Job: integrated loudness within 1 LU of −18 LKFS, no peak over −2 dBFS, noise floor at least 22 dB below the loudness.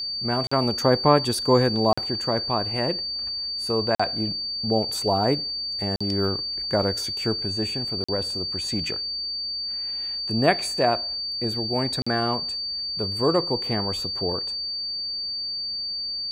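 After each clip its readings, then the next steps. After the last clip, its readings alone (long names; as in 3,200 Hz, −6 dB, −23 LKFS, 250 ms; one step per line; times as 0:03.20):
number of dropouts 6; longest dropout 45 ms; interfering tone 4,600 Hz; level of the tone −27 dBFS; integrated loudness −24.0 LKFS; sample peak −4.0 dBFS; target loudness −18.0 LKFS
→ repair the gap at 0:00.47/0:01.93/0:03.95/0:05.96/0:08.04/0:12.02, 45 ms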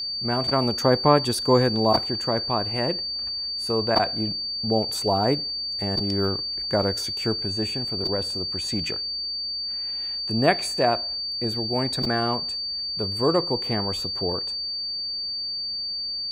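number of dropouts 0; interfering tone 4,600 Hz; level of the tone −27 dBFS
→ notch filter 4,600 Hz, Q 30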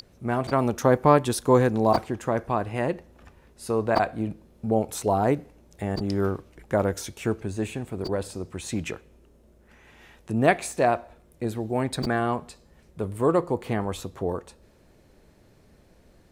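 interfering tone none found; integrated loudness −26.0 LKFS; sample peak −5.0 dBFS; target loudness −18.0 LKFS
→ level +8 dB
brickwall limiter −2 dBFS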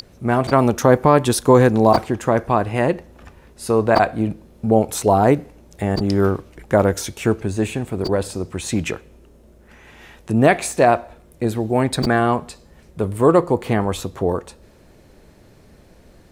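integrated loudness −18.5 LKFS; sample peak −2.0 dBFS; background noise floor −50 dBFS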